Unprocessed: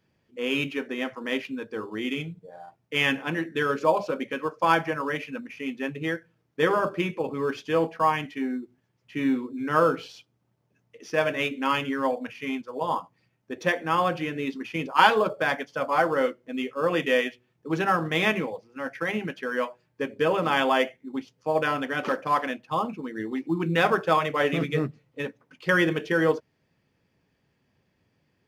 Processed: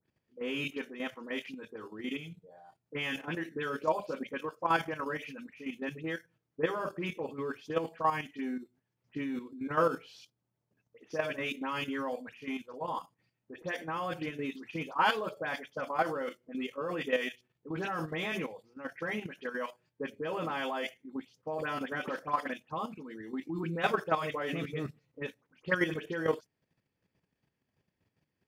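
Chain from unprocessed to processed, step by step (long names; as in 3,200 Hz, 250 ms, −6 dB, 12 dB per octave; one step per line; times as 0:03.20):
all-pass dispersion highs, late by 76 ms, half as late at 2,700 Hz
output level in coarse steps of 10 dB
level −4.5 dB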